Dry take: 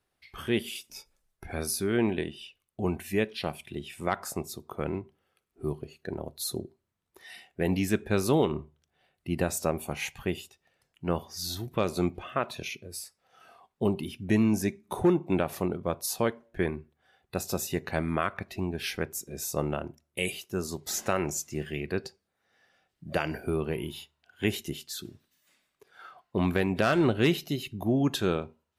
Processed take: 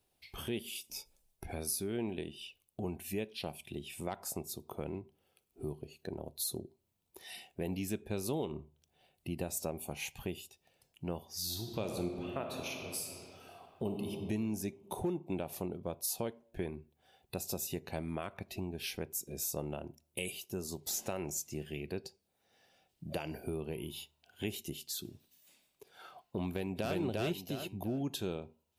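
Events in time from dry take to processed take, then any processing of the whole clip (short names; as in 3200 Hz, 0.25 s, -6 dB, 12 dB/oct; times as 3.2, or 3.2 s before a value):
11.34–14.11 reverb throw, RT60 1.9 s, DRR 3 dB
26.49–26.97 echo throw 0.35 s, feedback 30%, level 0 dB
whole clip: band shelf 1500 Hz -8 dB 1.1 oct; compressor 2:1, threshold -44 dBFS; high shelf 11000 Hz +9.5 dB; gain +1 dB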